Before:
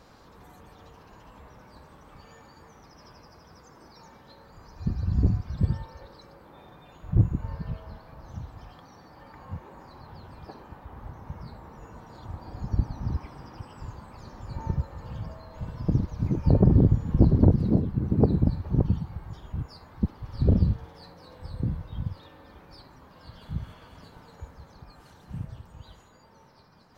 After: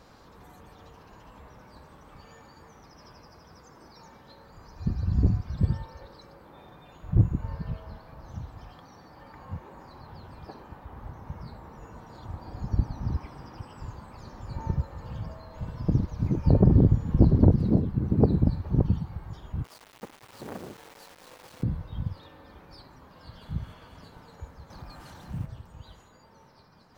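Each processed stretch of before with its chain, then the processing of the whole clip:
0:19.64–0:21.63: gain into a clipping stage and back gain 26 dB + band-pass filter 350–3,600 Hz + bit-depth reduction 8 bits, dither none
0:24.70–0:25.46: mu-law and A-law mismatch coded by mu + notch filter 430 Hz, Q 6.8
whole clip: no processing

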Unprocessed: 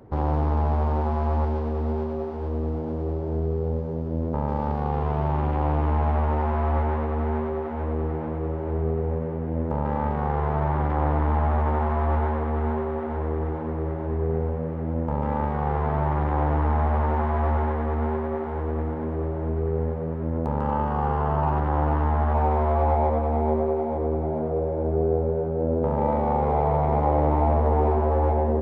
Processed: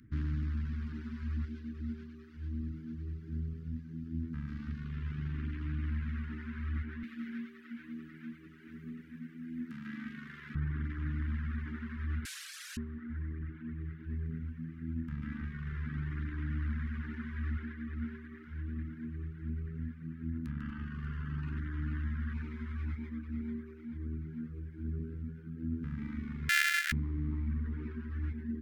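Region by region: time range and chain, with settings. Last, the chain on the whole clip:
0:07.03–0:10.55: high-pass with resonance 220 Hz, resonance Q 2.6 + tilt shelving filter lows −8 dB, about 1,400 Hz
0:12.25–0:12.77: linear delta modulator 64 kbit/s, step −28.5 dBFS + Butterworth high-pass 990 Hz 96 dB per octave + floating-point word with a short mantissa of 8 bits
0:26.49–0:26.92: samples sorted by size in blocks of 128 samples + Chebyshev high-pass filter 1,400 Hz, order 3 + parametric band 1,800 Hz +11.5 dB 1.6 octaves
whole clip: Chebyshev band-stop filter 270–1,600 Hz, order 3; reverb reduction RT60 1.8 s; low-shelf EQ 240 Hz −4 dB; level −3 dB

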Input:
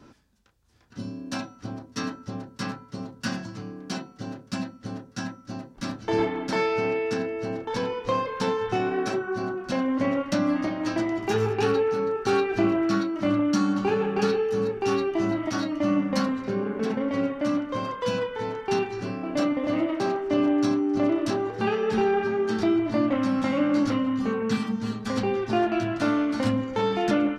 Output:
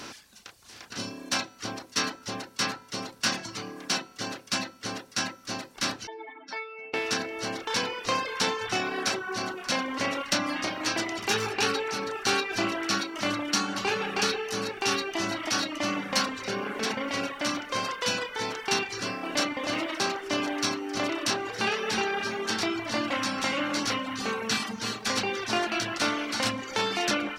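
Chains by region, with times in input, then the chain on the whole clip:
0:06.07–0:06.94: expanding power law on the bin magnitudes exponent 2.5 + high-pass filter 1,300 Hz
whole clip: compressor on every frequency bin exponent 0.6; reverb reduction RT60 0.84 s; tilt shelving filter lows −9.5 dB, about 1,100 Hz; level −1.5 dB

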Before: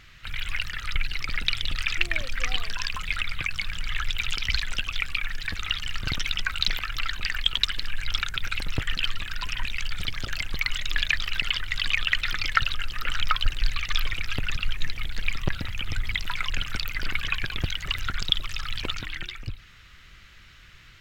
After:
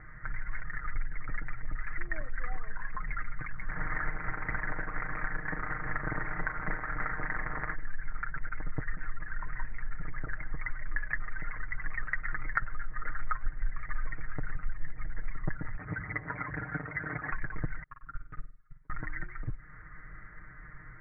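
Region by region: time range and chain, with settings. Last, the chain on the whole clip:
0:03.68–0:07.73: compressing power law on the bin magnitudes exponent 0.57 + double-tracking delay 41 ms −9 dB
0:15.77–0:17.32: lower of the sound and its delayed copy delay 7 ms + high-pass filter 62 Hz 24 dB per octave
0:17.83–0:18.90: noise gate −22 dBFS, range −46 dB + comb filter 7.3 ms, depth 81% + flutter between parallel walls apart 8.3 metres, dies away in 0.37 s
whole clip: Butterworth low-pass 2,000 Hz 96 dB per octave; comb filter 6.5 ms, depth 75%; downward compressor 2 to 1, threshold −38 dBFS; level +2.5 dB

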